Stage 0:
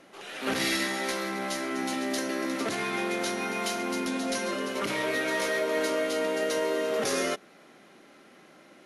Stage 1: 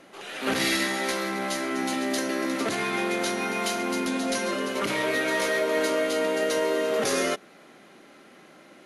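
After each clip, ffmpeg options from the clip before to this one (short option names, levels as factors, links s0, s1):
-af "bandreject=f=5500:w=20,volume=1.41"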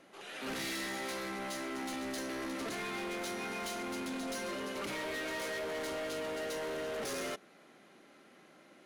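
-af "asoftclip=type=hard:threshold=0.0422,volume=0.376"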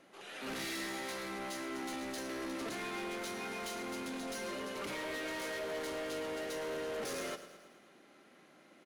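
-af "aecho=1:1:109|218|327|436|545|654:0.224|0.132|0.0779|0.046|0.0271|0.016,volume=0.794"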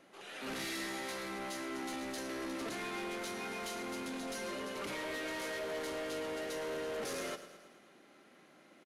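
-af "aresample=32000,aresample=44100"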